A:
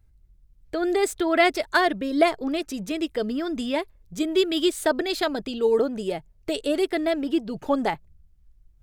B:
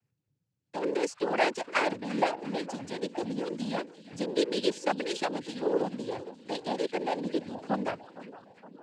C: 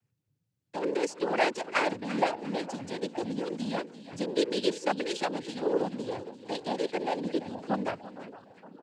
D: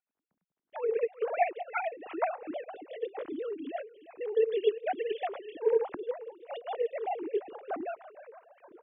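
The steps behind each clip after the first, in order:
split-band echo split 1200 Hz, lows 0.463 s, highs 0.346 s, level -15 dB; noise vocoder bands 8; gain -7 dB
bell 99 Hz +3 dB; echo 0.339 s -16.5 dB
sine-wave speech; gain -1.5 dB

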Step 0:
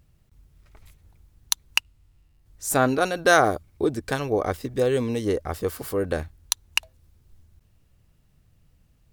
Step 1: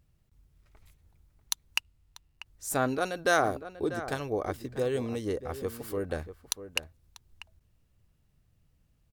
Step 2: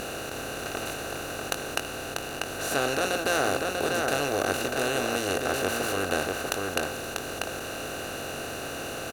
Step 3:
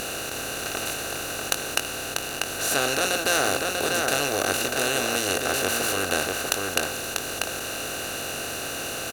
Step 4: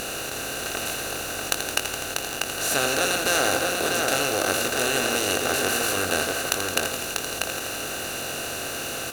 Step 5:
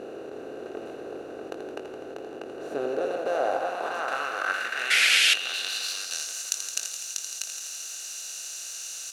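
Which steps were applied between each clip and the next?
outdoor echo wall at 110 m, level -12 dB; gain -7.5 dB
per-bin compression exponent 0.2; doubler 21 ms -8.5 dB; gain -6.5 dB
high shelf 2100 Hz +8.5 dB
lo-fi delay 83 ms, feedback 80%, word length 6-bit, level -8 dB
painted sound noise, 4.9–5.34, 1300–12000 Hz -14 dBFS; band-pass sweep 390 Hz -> 6300 Hz, 2.84–6.31; gain +2.5 dB

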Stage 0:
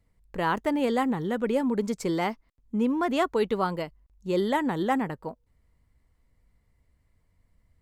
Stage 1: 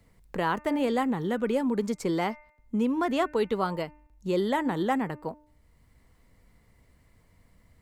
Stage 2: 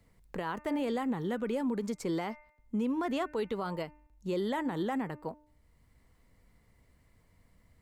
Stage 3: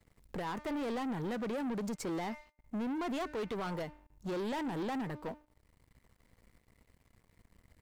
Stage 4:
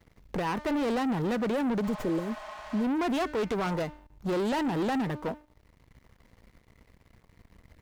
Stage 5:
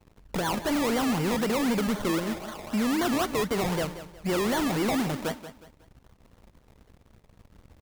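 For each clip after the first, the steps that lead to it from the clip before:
de-hum 300.1 Hz, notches 9; three-band squash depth 40%; gain -1 dB
limiter -20.5 dBFS, peak gain reduction 7 dB; gain -4 dB
sample leveller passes 3; gain -8 dB
spectral repair 1.86–2.81, 590–6500 Hz before; running maximum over 5 samples; gain +8 dB
decimation with a swept rate 24×, swing 60% 3.9 Hz; feedback echo 0.182 s, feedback 35%, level -13 dB; gain +2 dB

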